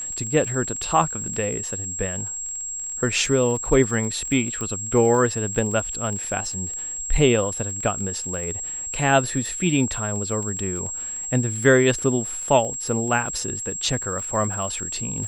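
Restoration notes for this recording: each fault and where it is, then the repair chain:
crackle 22 per s -30 dBFS
whine 7.6 kHz -28 dBFS
4.61 s: pop -16 dBFS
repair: de-click; band-stop 7.6 kHz, Q 30

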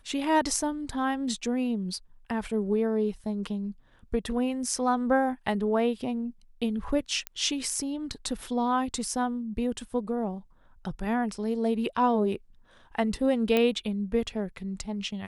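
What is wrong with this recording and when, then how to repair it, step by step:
7.27 s: pop -15 dBFS
13.57 s: pop -12 dBFS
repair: de-click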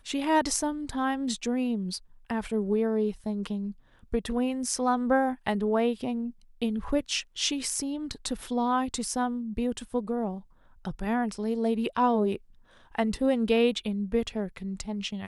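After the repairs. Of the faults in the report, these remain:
nothing left

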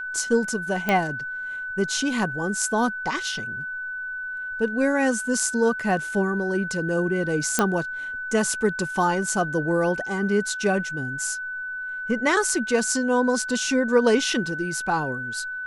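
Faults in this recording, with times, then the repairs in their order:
whine 1.5 kHz -29 dBFS
0.89 s: pop -9 dBFS
7.59 s: pop -5 dBFS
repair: de-click; band-stop 1.5 kHz, Q 30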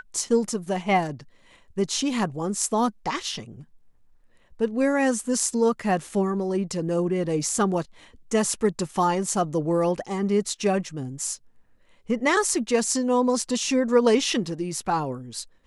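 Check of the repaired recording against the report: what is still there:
nothing left

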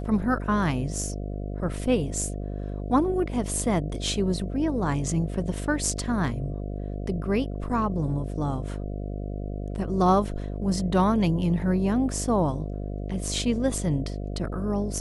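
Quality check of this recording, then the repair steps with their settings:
buzz 50 Hz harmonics 14 -32 dBFS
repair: de-hum 50 Hz, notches 14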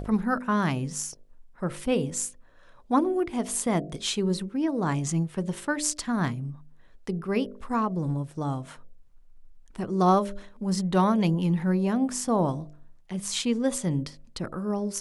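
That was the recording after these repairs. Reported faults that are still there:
nothing left

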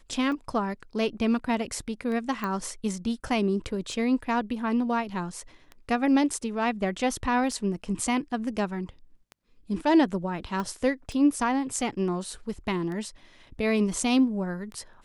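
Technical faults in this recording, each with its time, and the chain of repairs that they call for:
tick 33 1/3 rpm -26 dBFS
2.44 s: pop -18 dBFS
10.60 s: pop -19 dBFS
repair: de-click

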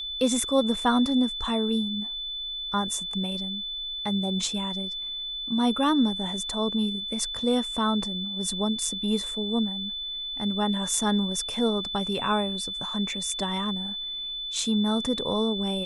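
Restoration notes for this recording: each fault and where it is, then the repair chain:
whine 3.5 kHz -31 dBFS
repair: band-stop 3.5 kHz, Q 30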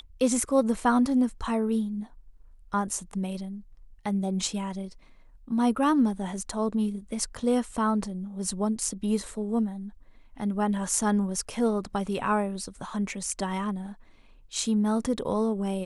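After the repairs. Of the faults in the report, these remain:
nothing left

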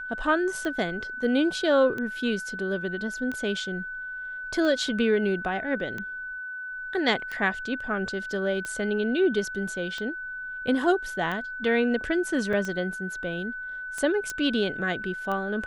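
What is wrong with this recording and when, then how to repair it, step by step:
tick 45 rpm -20 dBFS
whine 1.5 kHz -33 dBFS
12.53 s: dropout 4.1 ms
14.30 s: pop -16 dBFS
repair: de-click; band-stop 1.5 kHz, Q 30; interpolate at 12.53 s, 4.1 ms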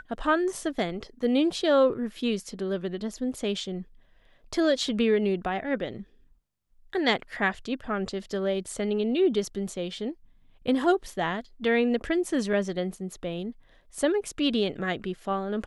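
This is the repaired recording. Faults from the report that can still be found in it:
nothing left

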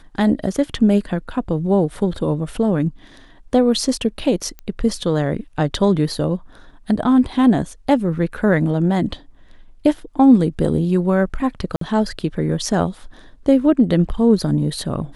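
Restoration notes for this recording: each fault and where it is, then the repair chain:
4.59 s: pop -19 dBFS
11.76–11.81 s: dropout 53 ms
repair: de-click; interpolate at 11.76 s, 53 ms

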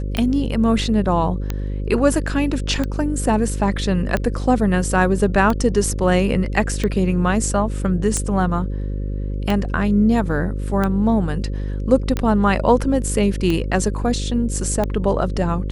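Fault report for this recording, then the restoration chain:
buzz 50 Hz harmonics 11 -24 dBFS
tick 45 rpm -9 dBFS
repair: de-click; de-hum 50 Hz, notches 11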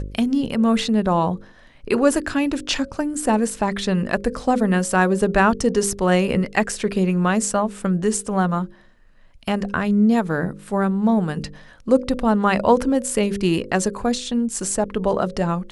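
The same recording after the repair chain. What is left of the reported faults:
nothing left

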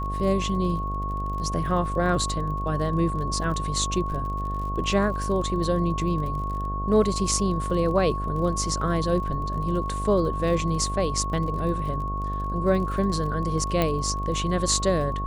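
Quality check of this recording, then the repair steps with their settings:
buzz 50 Hz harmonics 15 -30 dBFS
crackle 38 per s -34 dBFS
whine 1.1 kHz -30 dBFS
13.82 s: pop -10 dBFS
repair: de-click; band-stop 1.1 kHz, Q 30; de-hum 50 Hz, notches 15

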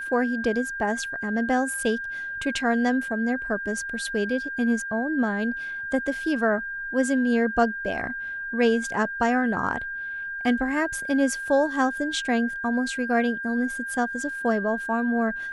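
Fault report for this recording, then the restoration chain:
whine 1.6 kHz -30 dBFS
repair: band-stop 1.6 kHz, Q 30

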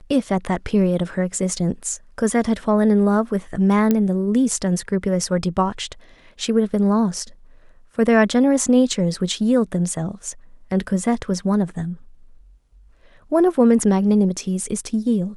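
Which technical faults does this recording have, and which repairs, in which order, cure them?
3.91 s: pop -6 dBFS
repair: de-click

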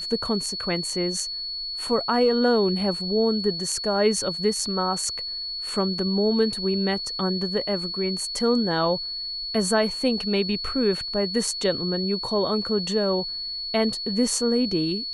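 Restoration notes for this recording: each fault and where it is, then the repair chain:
whine 4.4 kHz -29 dBFS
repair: band-stop 4.4 kHz, Q 30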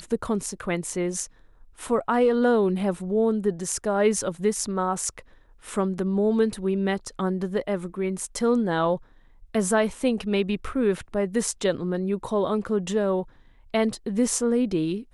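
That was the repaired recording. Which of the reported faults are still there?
nothing left

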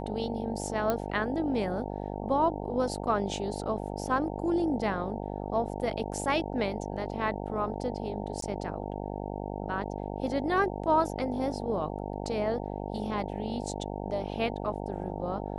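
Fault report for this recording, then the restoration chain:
buzz 50 Hz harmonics 18 -36 dBFS
0.90 s: pop -14 dBFS
8.41–8.42 s: dropout 13 ms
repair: de-click; de-hum 50 Hz, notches 18; interpolate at 8.41 s, 13 ms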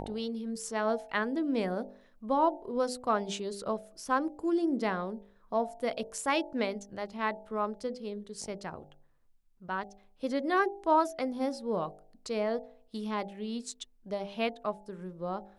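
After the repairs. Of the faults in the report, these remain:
nothing left

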